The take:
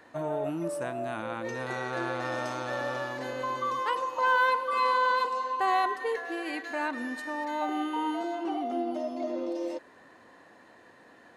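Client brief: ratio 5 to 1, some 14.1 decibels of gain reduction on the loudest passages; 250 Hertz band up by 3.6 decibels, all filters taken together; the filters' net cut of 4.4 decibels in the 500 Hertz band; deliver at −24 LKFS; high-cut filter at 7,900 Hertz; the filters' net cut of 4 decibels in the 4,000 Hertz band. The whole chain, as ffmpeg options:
ffmpeg -i in.wav -af "lowpass=7900,equalizer=frequency=250:width_type=o:gain=8,equalizer=frequency=500:width_type=o:gain=-8,equalizer=frequency=4000:width_type=o:gain=-5,acompressor=threshold=-40dB:ratio=5,volume=18dB" out.wav

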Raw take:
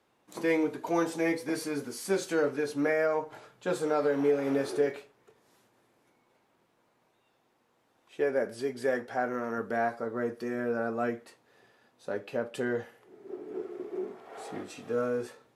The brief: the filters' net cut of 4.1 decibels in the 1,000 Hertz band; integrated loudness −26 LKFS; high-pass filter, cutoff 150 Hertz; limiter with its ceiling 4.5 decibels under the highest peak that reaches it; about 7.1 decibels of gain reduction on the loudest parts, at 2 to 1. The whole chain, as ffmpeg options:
ffmpeg -i in.wav -af "highpass=150,equalizer=frequency=1000:width_type=o:gain=-6.5,acompressor=threshold=-36dB:ratio=2,volume=13dB,alimiter=limit=-15dB:level=0:latency=1" out.wav

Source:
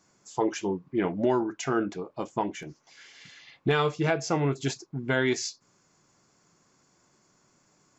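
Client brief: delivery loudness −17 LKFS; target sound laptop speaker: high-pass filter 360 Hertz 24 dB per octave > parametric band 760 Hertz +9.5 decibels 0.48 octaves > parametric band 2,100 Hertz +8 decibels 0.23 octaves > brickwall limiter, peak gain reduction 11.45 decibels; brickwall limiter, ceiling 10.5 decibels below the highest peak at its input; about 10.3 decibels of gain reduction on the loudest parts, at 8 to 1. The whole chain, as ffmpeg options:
ffmpeg -i in.wav -af "acompressor=threshold=-31dB:ratio=8,alimiter=level_in=5.5dB:limit=-24dB:level=0:latency=1,volume=-5.5dB,highpass=frequency=360:width=0.5412,highpass=frequency=360:width=1.3066,equalizer=frequency=760:width_type=o:width=0.48:gain=9.5,equalizer=frequency=2100:width_type=o:width=0.23:gain=8,volume=29dB,alimiter=limit=-7.5dB:level=0:latency=1" out.wav

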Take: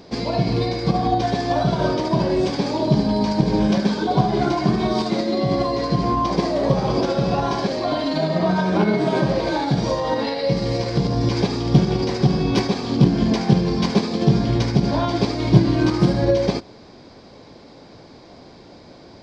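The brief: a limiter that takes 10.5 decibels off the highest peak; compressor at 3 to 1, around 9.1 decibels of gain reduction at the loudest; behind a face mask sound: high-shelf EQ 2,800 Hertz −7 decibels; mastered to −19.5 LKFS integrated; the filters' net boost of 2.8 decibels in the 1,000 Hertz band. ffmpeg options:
ffmpeg -i in.wav -af "equalizer=frequency=1000:width_type=o:gain=4.5,acompressor=threshold=-20dB:ratio=3,alimiter=limit=-19dB:level=0:latency=1,highshelf=frequency=2800:gain=-7,volume=8.5dB" out.wav

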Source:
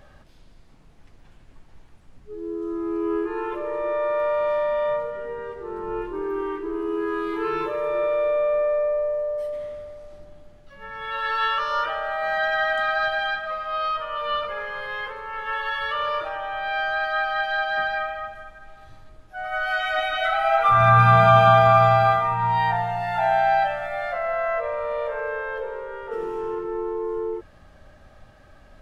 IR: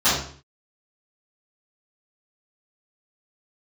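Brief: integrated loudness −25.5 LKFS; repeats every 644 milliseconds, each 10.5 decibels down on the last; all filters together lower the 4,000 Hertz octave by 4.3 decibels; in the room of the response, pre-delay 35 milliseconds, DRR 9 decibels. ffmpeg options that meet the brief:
-filter_complex "[0:a]equalizer=frequency=4000:width_type=o:gain=-6,aecho=1:1:644|1288|1932:0.299|0.0896|0.0269,asplit=2[link_01][link_02];[1:a]atrim=start_sample=2205,adelay=35[link_03];[link_02][link_03]afir=irnorm=-1:irlink=0,volume=-28.5dB[link_04];[link_01][link_04]amix=inputs=2:normalize=0,volume=-2.5dB"

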